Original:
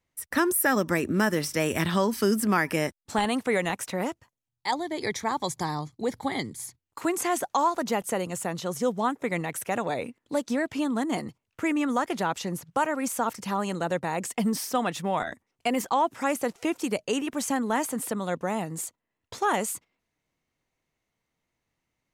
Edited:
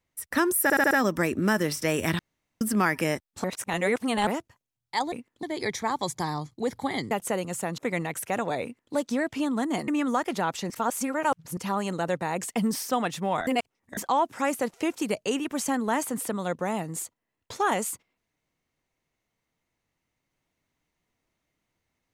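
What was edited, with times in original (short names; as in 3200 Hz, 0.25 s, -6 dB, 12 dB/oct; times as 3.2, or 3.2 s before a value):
0.63 stutter 0.07 s, 5 plays
1.91–2.33 room tone
3.16–3.99 reverse
6.52–7.93 cut
8.6–9.17 cut
10.02–10.33 copy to 4.84
11.27–11.7 cut
12.52–13.39 reverse
15.29–15.79 reverse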